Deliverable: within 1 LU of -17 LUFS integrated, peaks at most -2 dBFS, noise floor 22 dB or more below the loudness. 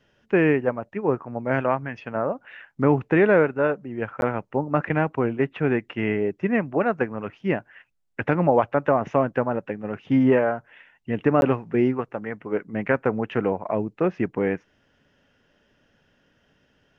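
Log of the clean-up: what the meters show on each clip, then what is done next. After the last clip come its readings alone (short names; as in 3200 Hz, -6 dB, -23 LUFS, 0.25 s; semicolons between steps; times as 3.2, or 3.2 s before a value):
dropouts 2; longest dropout 11 ms; loudness -24.0 LUFS; peak -5.5 dBFS; loudness target -17.0 LUFS
-> interpolate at 4.21/11.41, 11 ms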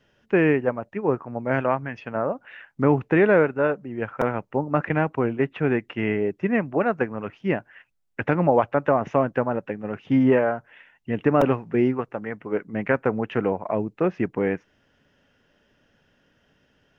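dropouts 0; loudness -24.0 LUFS; peak -5.5 dBFS; loudness target -17.0 LUFS
-> gain +7 dB; limiter -2 dBFS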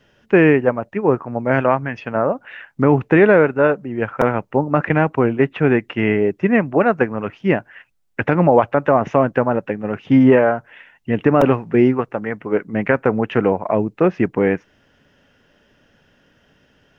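loudness -17.5 LUFS; peak -2.0 dBFS; noise floor -59 dBFS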